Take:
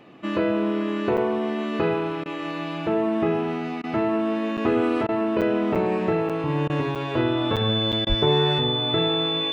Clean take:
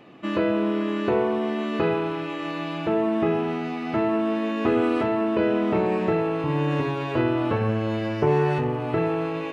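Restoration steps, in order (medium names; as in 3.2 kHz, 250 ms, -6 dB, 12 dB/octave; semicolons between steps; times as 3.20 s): band-stop 3.5 kHz, Q 30; 8.08–8.20 s: high-pass 140 Hz 24 dB/octave; interpolate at 1.17/4.57/5.41/5.75/6.29/6.95/7.56/7.92 s, 7 ms; interpolate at 2.24/3.82/5.07/6.68/8.05 s, 16 ms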